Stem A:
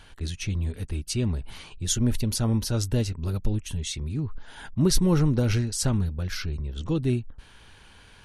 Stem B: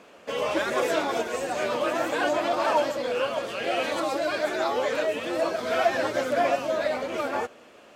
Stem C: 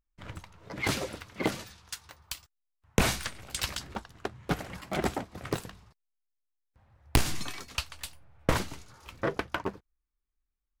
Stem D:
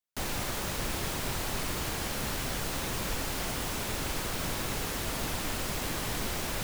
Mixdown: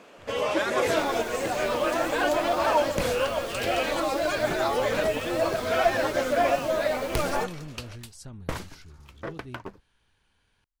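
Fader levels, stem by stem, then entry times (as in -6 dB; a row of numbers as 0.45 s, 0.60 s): -18.5 dB, +0.5 dB, -6.0 dB, -10.0 dB; 2.40 s, 0.00 s, 0.00 s, 0.80 s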